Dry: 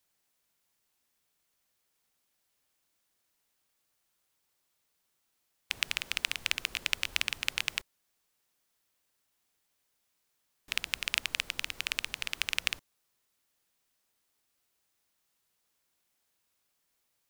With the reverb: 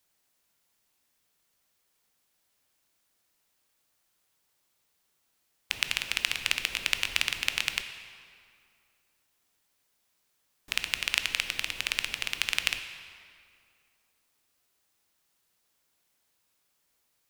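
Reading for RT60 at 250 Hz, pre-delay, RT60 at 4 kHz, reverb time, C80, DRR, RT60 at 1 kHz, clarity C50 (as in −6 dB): 2.2 s, 14 ms, 1.6 s, 2.3 s, 10.0 dB, 8.0 dB, 2.3 s, 9.0 dB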